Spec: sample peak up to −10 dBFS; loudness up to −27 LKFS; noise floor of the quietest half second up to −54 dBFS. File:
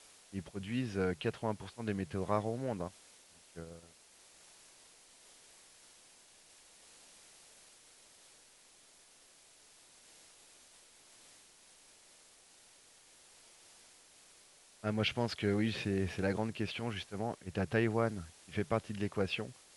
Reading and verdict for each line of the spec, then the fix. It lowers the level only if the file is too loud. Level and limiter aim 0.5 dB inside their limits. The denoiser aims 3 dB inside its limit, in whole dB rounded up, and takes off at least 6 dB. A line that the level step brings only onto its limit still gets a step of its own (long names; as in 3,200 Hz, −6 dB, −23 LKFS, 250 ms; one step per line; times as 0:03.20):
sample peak −16.5 dBFS: in spec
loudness −36.5 LKFS: in spec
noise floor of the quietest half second −63 dBFS: in spec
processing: no processing needed